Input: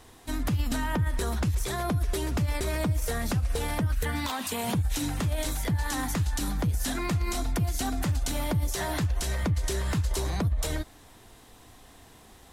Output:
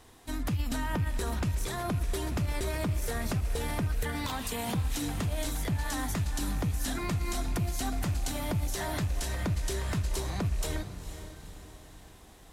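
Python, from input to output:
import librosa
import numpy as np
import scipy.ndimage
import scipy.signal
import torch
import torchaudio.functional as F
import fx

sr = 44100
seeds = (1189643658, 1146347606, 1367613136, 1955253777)

y = fx.rattle_buzz(x, sr, strikes_db=-26.0, level_db=-37.0)
y = fx.echo_diffused(y, sr, ms=478, feedback_pct=49, wet_db=-11.0)
y = y * librosa.db_to_amplitude(-3.5)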